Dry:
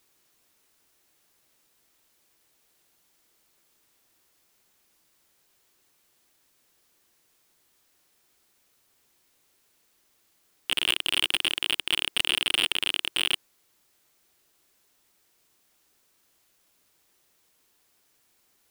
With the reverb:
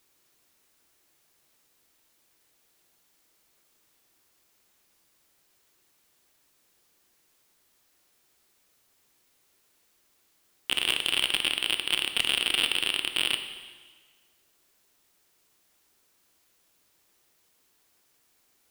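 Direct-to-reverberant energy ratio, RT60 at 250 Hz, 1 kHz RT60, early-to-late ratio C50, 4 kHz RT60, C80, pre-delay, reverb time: 7.0 dB, 1.5 s, 1.5 s, 8.5 dB, 1.4 s, 10.0 dB, 7 ms, 1.5 s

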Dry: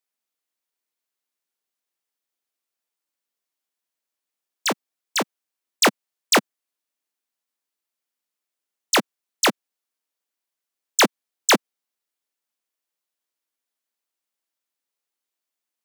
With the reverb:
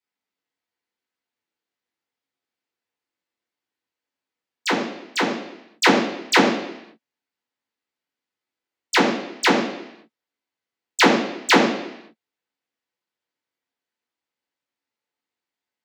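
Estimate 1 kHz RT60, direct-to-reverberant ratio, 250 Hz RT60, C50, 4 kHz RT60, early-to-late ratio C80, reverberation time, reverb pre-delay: 0.85 s, -7.5 dB, 0.85 s, 5.0 dB, 0.90 s, 7.0 dB, 0.85 s, 3 ms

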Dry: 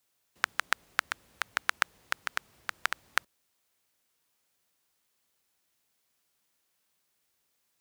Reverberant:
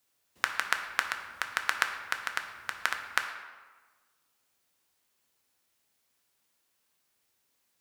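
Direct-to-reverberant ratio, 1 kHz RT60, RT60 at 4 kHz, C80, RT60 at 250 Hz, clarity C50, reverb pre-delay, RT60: 4.5 dB, 1.4 s, 0.90 s, 9.0 dB, 1.3 s, 7.5 dB, 3 ms, 1.4 s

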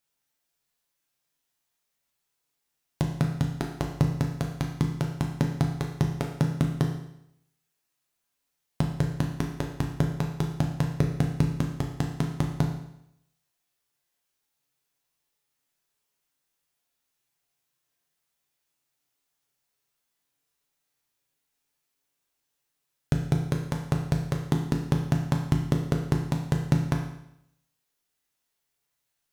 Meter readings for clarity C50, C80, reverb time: 6.0 dB, 8.5 dB, 0.75 s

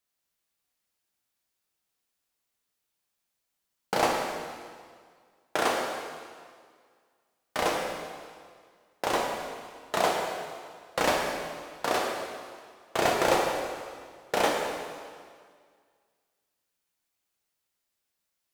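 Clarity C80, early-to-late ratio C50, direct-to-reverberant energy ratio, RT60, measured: 3.0 dB, 1.5 dB, -1.0 dB, 1.9 s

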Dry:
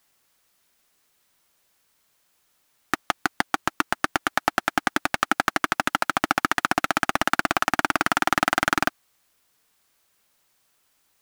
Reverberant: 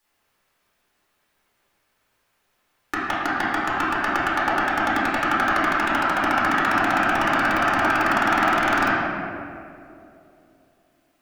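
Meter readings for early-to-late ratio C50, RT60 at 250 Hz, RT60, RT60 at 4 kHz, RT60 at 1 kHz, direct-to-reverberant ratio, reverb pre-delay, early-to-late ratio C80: -3.0 dB, 3.0 s, 2.8 s, 1.4 s, 2.2 s, -10.0 dB, 3 ms, -0.5 dB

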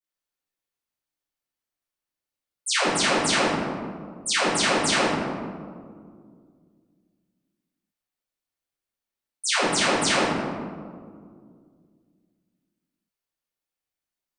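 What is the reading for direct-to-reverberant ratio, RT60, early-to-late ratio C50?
-15.0 dB, 2.0 s, -2.5 dB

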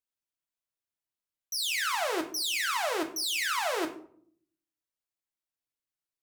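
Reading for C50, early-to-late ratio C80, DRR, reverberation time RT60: 11.5 dB, 15.5 dB, 3.0 dB, 0.60 s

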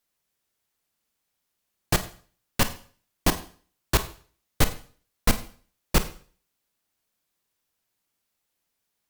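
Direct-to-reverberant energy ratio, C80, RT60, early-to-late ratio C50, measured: 10.0 dB, 17.0 dB, 0.45 s, 13.0 dB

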